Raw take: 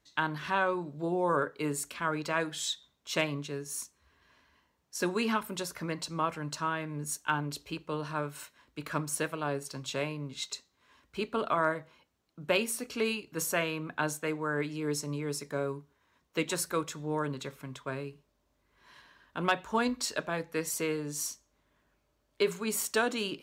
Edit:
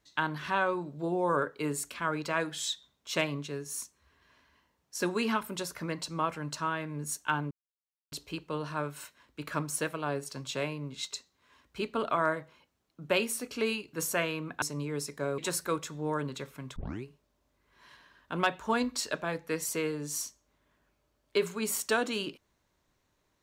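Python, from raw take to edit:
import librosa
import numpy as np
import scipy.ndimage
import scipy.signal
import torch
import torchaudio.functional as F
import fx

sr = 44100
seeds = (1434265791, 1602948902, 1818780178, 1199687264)

y = fx.edit(x, sr, fx.insert_silence(at_s=7.51, length_s=0.61),
    fx.cut(start_s=14.01, length_s=0.94),
    fx.cut(start_s=15.71, length_s=0.72),
    fx.tape_start(start_s=17.81, length_s=0.28), tone=tone)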